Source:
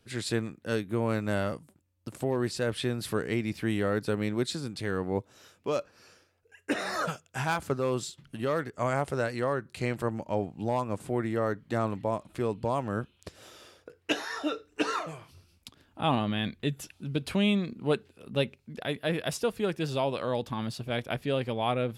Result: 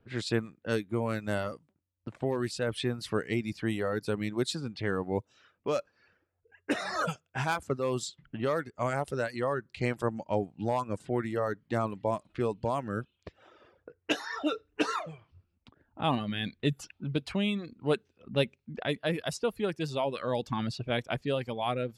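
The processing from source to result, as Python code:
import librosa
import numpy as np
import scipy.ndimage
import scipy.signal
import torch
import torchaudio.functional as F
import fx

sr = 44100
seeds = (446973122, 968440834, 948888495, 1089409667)

y = fx.env_lowpass(x, sr, base_hz=1500.0, full_db=-25.5)
y = fx.dereverb_blind(y, sr, rt60_s=0.8)
y = fx.rider(y, sr, range_db=4, speed_s=0.5)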